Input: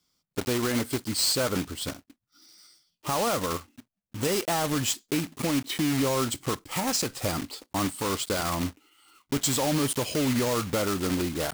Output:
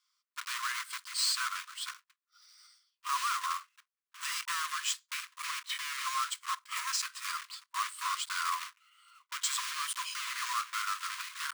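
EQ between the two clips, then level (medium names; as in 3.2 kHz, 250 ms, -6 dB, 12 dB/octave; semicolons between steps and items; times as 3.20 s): brick-wall FIR high-pass 970 Hz; treble shelf 2.2 kHz -8.5 dB; peaking EQ 14 kHz -11.5 dB 0.24 oct; +2.5 dB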